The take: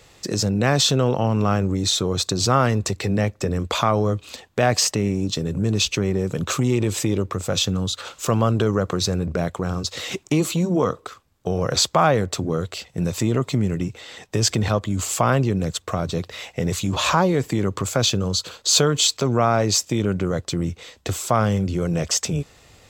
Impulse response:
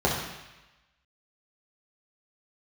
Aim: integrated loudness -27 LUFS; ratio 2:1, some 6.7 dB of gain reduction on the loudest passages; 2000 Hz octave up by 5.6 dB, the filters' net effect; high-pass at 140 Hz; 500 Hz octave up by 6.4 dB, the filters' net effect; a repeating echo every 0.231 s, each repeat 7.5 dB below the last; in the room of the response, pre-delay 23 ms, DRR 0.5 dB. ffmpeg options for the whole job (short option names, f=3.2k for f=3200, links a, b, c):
-filter_complex "[0:a]highpass=140,equalizer=f=500:t=o:g=7.5,equalizer=f=2k:t=o:g=7,acompressor=threshold=-21dB:ratio=2,aecho=1:1:231|462|693|924|1155:0.422|0.177|0.0744|0.0312|0.0131,asplit=2[a][b];[1:a]atrim=start_sample=2205,adelay=23[c];[b][c]afir=irnorm=-1:irlink=0,volume=-16dB[d];[a][d]amix=inputs=2:normalize=0,volume=-8.5dB"